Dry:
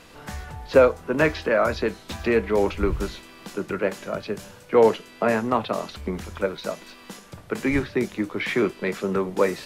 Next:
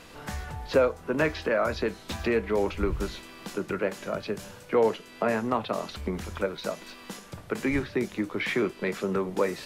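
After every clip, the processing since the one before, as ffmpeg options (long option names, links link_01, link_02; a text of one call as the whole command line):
ffmpeg -i in.wav -af "acompressor=threshold=-30dB:ratio=1.5" out.wav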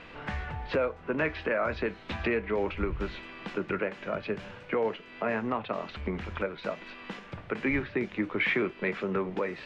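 ffmpeg -i in.wav -af "alimiter=limit=-19.5dB:level=0:latency=1:release=391,lowpass=frequency=2500:width_type=q:width=1.6" out.wav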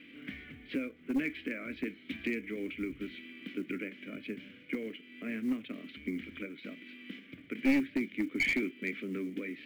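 ffmpeg -i in.wav -filter_complex "[0:a]asplit=3[link_01][link_02][link_03];[link_01]bandpass=frequency=270:width_type=q:width=8,volume=0dB[link_04];[link_02]bandpass=frequency=2290:width_type=q:width=8,volume=-6dB[link_05];[link_03]bandpass=frequency=3010:width_type=q:width=8,volume=-9dB[link_06];[link_04][link_05][link_06]amix=inputs=3:normalize=0,aeval=exprs='clip(val(0),-1,0.0211)':channel_layout=same,acrusher=bits=8:mode=log:mix=0:aa=0.000001,volume=7dB" out.wav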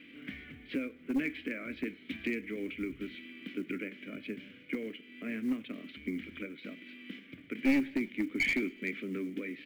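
ffmpeg -i in.wav -af "aecho=1:1:97|194|291:0.0631|0.0328|0.0171" out.wav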